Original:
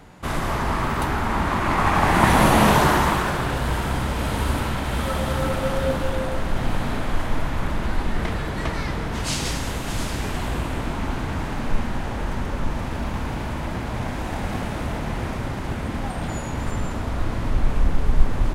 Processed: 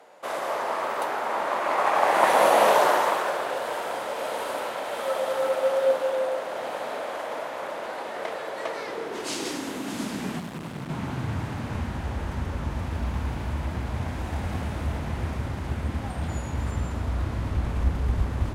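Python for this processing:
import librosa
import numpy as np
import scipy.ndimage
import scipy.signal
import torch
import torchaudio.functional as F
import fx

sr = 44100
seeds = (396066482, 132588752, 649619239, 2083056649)

y = fx.cheby_harmonics(x, sr, harmonics=(7,), levels_db=(-34,), full_scale_db=-2.0)
y = fx.overload_stage(y, sr, gain_db=30.0, at=(10.39, 10.9))
y = fx.filter_sweep_highpass(y, sr, from_hz=550.0, to_hz=68.0, start_s=8.61, end_s=12.06, q=3.1)
y = F.gain(torch.from_numpy(y), -4.5).numpy()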